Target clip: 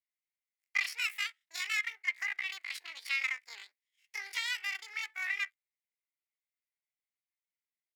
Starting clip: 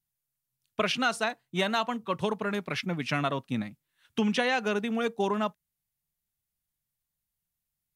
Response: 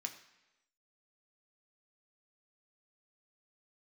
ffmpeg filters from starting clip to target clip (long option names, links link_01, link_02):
-af "bandreject=frequency=3300:width=14,aeval=exprs='max(val(0),0)':channel_layout=same,highpass=frequency=1100:width_type=q:width=7.2,asetrate=83250,aresample=44100,atempo=0.529732,volume=-8dB"